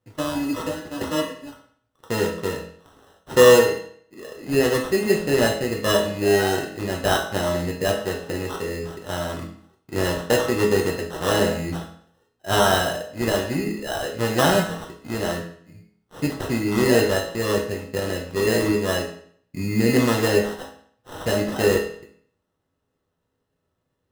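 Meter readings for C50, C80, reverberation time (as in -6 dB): 6.0 dB, 10.0 dB, 0.60 s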